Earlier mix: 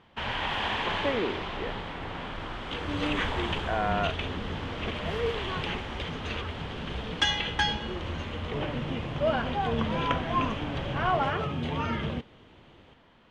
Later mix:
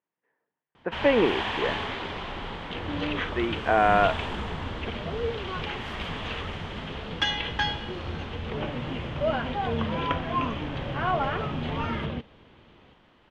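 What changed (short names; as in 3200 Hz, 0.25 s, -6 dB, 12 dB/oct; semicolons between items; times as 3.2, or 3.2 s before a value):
speech +8.5 dB; first sound: entry +0.75 s; second sound: add LPF 4600 Hz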